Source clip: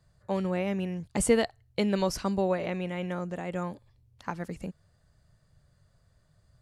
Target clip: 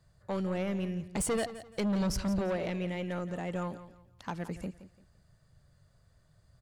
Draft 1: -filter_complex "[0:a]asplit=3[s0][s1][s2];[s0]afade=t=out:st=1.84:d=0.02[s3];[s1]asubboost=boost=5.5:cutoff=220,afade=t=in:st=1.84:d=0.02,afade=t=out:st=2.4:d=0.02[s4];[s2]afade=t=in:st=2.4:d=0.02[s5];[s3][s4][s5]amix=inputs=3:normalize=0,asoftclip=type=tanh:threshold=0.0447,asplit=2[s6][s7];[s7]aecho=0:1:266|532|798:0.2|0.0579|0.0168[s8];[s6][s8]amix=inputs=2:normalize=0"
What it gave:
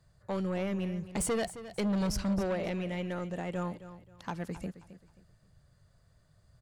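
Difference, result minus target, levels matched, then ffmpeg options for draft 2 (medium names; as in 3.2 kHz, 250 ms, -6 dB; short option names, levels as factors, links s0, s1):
echo 95 ms late
-filter_complex "[0:a]asplit=3[s0][s1][s2];[s0]afade=t=out:st=1.84:d=0.02[s3];[s1]asubboost=boost=5.5:cutoff=220,afade=t=in:st=1.84:d=0.02,afade=t=out:st=2.4:d=0.02[s4];[s2]afade=t=in:st=2.4:d=0.02[s5];[s3][s4][s5]amix=inputs=3:normalize=0,asoftclip=type=tanh:threshold=0.0447,asplit=2[s6][s7];[s7]aecho=0:1:171|342|513:0.2|0.0579|0.0168[s8];[s6][s8]amix=inputs=2:normalize=0"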